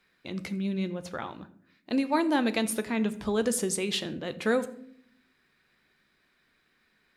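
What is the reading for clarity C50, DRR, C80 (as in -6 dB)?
15.5 dB, 11.0 dB, 17.5 dB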